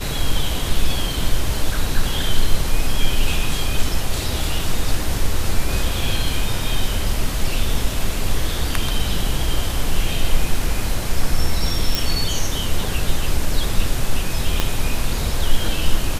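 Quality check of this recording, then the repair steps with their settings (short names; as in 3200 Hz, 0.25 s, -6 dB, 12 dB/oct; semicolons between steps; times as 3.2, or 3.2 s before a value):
11.95 pop
14.6 pop -3 dBFS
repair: de-click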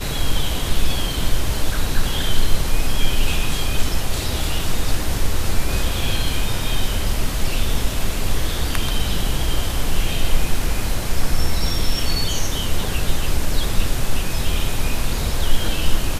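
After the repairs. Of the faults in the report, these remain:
14.6 pop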